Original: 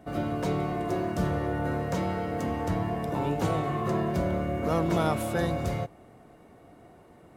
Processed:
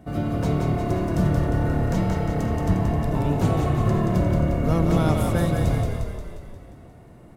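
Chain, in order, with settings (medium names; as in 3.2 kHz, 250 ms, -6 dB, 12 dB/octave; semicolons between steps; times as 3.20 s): tone controls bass +9 dB, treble +2 dB; on a send: frequency-shifting echo 177 ms, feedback 59%, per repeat -33 Hz, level -4 dB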